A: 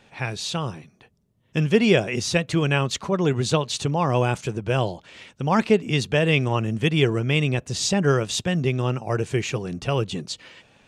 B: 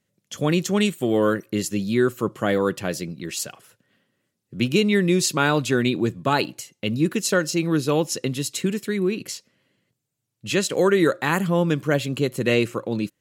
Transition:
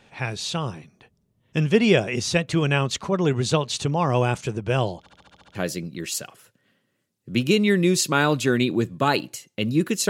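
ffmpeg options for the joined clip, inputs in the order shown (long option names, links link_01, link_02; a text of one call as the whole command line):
ffmpeg -i cue0.wav -i cue1.wav -filter_complex "[0:a]apad=whole_dur=10.09,atrim=end=10.09,asplit=8[link_01][link_02][link_03][link_04][link_05][link_06][link_07][link_08];[link_01]atrim=end=5.062[link_09];[link_02]atrim=start=4.988:end=5.062[link_10];[link_03]atrim=start=4.988:end=5.062[link_11];[link_04]atrim=start=4.988:end=5.062[link_12];[link_05]atrim=start=4.988:end=5.062[link_13];[link_06]atrim=start=4.988:end=5.062[link_14];[link_07]atrim=start=4.988:end=5.062[link_15];[link_08]atrim=start=4.988:end=5.062[link_16];[1:a]atrim=start=2.798:end=7.34[link_17];[link_09][link_10]acrossfade=duration=0.004:curve1=hsin:curve2=hsin[link_18];[link_18][link_11]acrossfade=duration=0.004:curve1=hsin:curve2=hsin[link_19];[link_19][link_12]acrossfade=duration=0.004:curve1=hsin:curve2=hsin[link_20];[link_20][link_13]acrossfade=duration=0.004:curve1=hsin:curve2=hsin[link_21];[link_21][link_14]acrossfade=duration=0.004:curve1=hsin:curve2=hsin[link_22];[link_22][link_15]acrossfade=duration=0.004:curve1=hsin:curve2=hsin[link_23];[link_23][link_16]acrossfade=duration=0.004:curve1=hsin:curve2=hsin[link_24];[link_24][link_17]acrossfade=duration=0.004:curve1=hsin:curve2=hsin" out.wav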